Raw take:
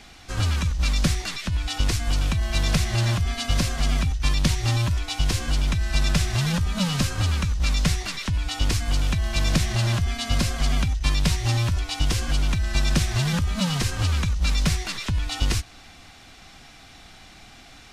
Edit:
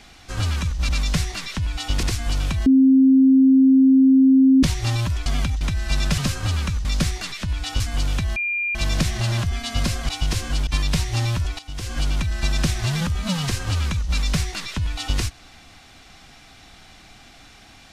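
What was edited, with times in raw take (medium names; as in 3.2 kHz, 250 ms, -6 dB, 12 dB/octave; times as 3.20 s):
0.89–1.84 s: swap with 7.60–8.74 s
2.47–4.44 s: bleep 265 Hz -10 dBFS
5.07–5.65 s: swap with 10.64–10.99 s
6.22–6.93 s: delete
9.30 s: add tone 2.4 kHz -21 dBFS 0.39 s
11.91–12.30 s: fade in quadratic, from -14.5 dB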